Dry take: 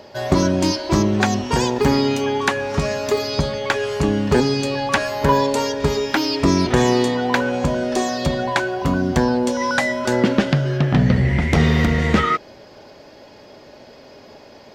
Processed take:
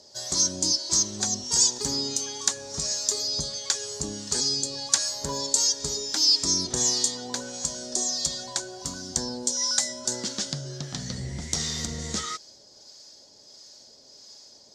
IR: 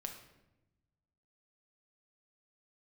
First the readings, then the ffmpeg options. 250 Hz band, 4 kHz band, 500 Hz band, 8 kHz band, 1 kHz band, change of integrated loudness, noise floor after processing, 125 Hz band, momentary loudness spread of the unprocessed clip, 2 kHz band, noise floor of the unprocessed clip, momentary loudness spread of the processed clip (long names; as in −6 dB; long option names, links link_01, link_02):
−18.5 dB, +2.0 dB, −18.5 dB, +10.0 dB, −18.0 dB, −6.0 dB, −53 dBFS, −18.5 dB, 5 LU, −18.0 dB, −44 dBFS, 11 LU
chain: -filter_complex "[0:a]acrossover=split=920[link_01][link_02];[link_01]aeval=exprs='val(0)*(1-0.5/2+0.5/2*cos(2*PI*1.5*n/s))':channel_layout=same[link_03];[link_02]aeval=exprs='val(0)*(1-0.5/2-0.5/2*cos(2*PI*1.5*n/s))':channel_layout=same[link_04];[link_03][link_04]amix=inputs=2:normalize=0,aexciter=amount=14.7:drive=2.3:freq=3900,lowpass=frequency=7200:width_type=q:width=2.1,volume=-16dB"